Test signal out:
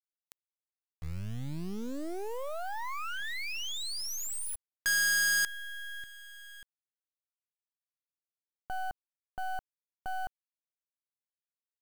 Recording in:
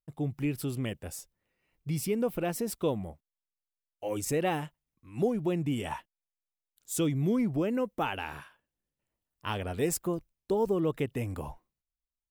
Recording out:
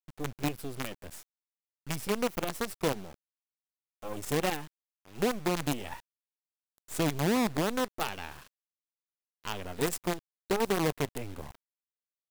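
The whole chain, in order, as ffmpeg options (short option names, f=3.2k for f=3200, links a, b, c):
-af "acrusher=bits=5:dc=4:mix=0:aa=0.000001,volume=-1.5dB"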